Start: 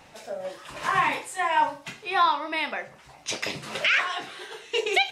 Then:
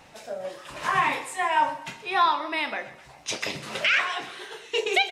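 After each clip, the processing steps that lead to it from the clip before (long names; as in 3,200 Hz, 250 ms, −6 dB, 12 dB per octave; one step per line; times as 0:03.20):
repeating echo 126 ms, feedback 41%, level −16 dB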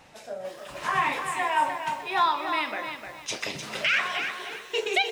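feedback echo at a low word length 303 ms, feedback 35%, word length 8 bits, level −7 dB
level −2 dB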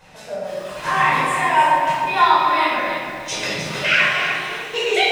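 rectangular room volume 740 cubic metres, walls mixed, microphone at 5.1 metres
level −1.5 dB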